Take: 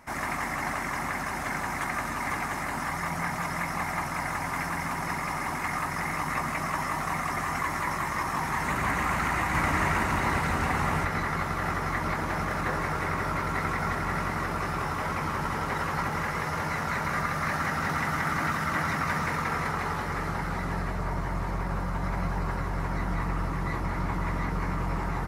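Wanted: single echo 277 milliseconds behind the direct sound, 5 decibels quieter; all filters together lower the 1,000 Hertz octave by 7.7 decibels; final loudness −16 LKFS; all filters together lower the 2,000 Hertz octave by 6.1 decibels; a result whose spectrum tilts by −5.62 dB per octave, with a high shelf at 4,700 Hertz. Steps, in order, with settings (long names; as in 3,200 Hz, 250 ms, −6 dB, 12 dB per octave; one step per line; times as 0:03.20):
parametric band 1,000 Hz −8.5 dB
parametric band 2,000 Hz −4 dB
high-shelf EQ 4,700 Hz −3.5 dB
single-tap delay 277 ms −5 dB
level +16 dB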